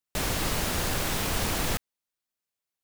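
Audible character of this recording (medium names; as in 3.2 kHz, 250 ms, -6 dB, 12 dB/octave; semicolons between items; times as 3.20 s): noise floor -89 dBFS; spectral tilt -3.0 dB/octave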